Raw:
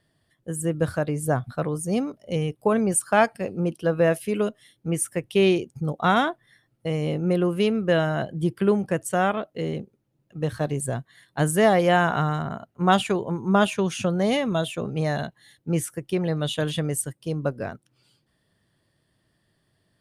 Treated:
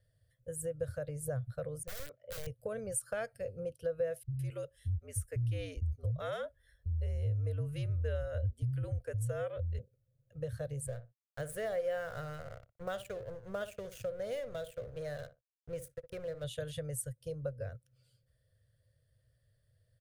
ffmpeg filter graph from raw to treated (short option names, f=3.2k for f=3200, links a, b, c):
-filter_complex "[0:a]asettb=1/sr,asplit=3[a][b][c];[a]atrim=end=1.834[d];[b]atrim=start=1.83:end=2.47,asetpts=PTS-STARTPTS,afade=t=in:d=0.004:c=qsin,afade=t=out:st=0.636:d=0.004:c=qsin,lowpass=f=2.5k:w=0.5412,lowpass=f=2.5k:w=1.3066,aemphasis=mode=production:type=riaa,aeval=exprs='(mod(25.1*val(0)+1,2)-1)/25.1':c=same[e];[c]atrim=start=2.466[f];[d][e]acrossfade=d=0.004:c1=hsin:c2=qsin[g];[g][f]acrossfade=d=0.004:c1=qsin:c2=hsin,asettb=1/sr,asplit=3[h][i][j];[h]atrim=end=4.234[k];[i]atrim=start=4.23:end=9.79,asetpts=PTS-STARTPTS,afade=t=in:d=0.004:c=qsin,afade=t=out:st=5.556:d=0.004:c=qsin,afreqshift=-75,acrossover=split=200[l][m];[m]adelay=160[n];[l][n]amix=inputs=2:normalize=0,atrim=end_sample=245196[o];[j]atrim=start=9.786[p];[k][o]acrossfade=d=0.004:c1=hsin:c2=qsin[q];[q][p]acrossfade=d=0.004:c1=qsin:c2=hsin,asettb=1/sr,asplit=3[r][s][t];[r]atrim=end=10.874[u];[s]atrim=start=10.87:end=16.44,asetpts=PTS-STARTPTS,afade=t=in:d=0.004:c=qsin,afade=t=out:st=5.566:d=0.004:c=qsin,bass=f=250:g=-5,treble=f=4k:g=-4,aeval=exprs='sgn(val(0))*max(abs(val(0))-0.015,0)':c=same,asplit=2[v][w];[w]adelay=60,lowpass=f=1k:p=1,volume=-12dB,asplit=2[x][y];[y]adelay=60,lowpass=f=1k:p=1,volume=0.17[z];[v][x][z]amix=inputs=3:normalize=0,atrim=end_sample=245637[aa];[t]atrim=start=16.436[ab];[u][aa]acrossfade=d=0.004:c1=hsin:c2=qsin[ac];[ac][ab]acrossfade=d=0.004:c1=qsin:c2=hsin,firequalizer=gain_entry='entry(120,0);entry(170,-22);entry(350,-28);entry(510,-3);entry(850,-29);entry(1500,-14);entry(2500,-19);entry(4300,-16)':delay=0.05:min_phase=1,acompressor=threshold=-42dB:ratio=2,highshelf=f=9.7k:g=10.5,volume=3dB"